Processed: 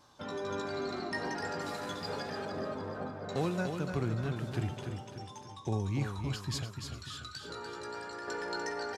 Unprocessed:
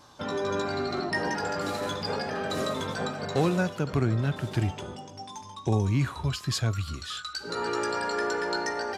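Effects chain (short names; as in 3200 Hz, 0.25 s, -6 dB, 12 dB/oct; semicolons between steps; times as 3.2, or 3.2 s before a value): 2.45–3.29 LPF 1200 Hz 12 dB/oct; 6.63–8.28 compressor, threshold -32 dBFS, peak gain reduction 10 dB; on a send: feedback echo 0.294 s, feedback 46%, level -6.5 dB; on the sum: gain -8 dB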